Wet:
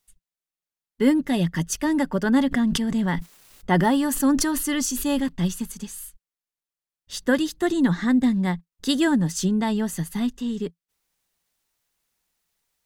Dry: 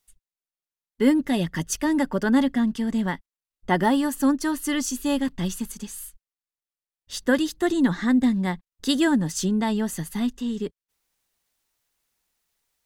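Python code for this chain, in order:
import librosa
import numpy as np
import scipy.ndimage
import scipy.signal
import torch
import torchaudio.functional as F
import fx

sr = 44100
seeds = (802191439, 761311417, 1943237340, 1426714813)

y = fx.peak_eq(x, sr, hz=170.0, db=5.5, octaves=0.24)
y = fx.sustainer(y, sr, db_per_s=36.0, at=(2.51, 5.21), fade=0.02)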